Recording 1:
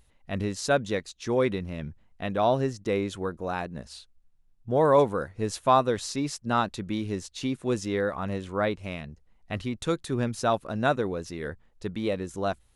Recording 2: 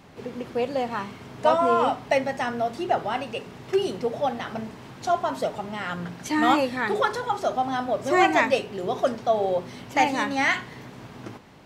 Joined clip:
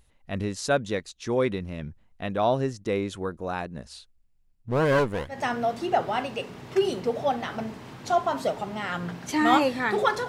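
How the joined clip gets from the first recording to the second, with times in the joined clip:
recording 1
4.11–5.43 s: comb filter that takes the minimum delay 0.4 ms
5.35 s: go over to recording 2 from 2.32 s, crossfade 0.16 s

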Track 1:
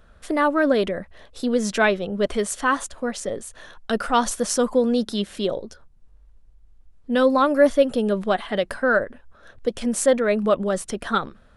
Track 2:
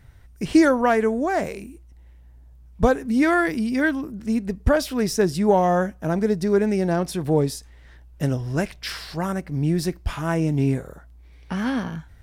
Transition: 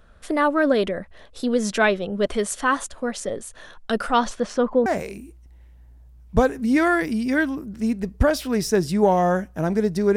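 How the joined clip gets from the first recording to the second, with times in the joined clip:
track 1
4.13–4.86 s: low-pass 6.1 kHz -> 1.6 kHz
4.86 s: go over to track 2 from 1.32 s

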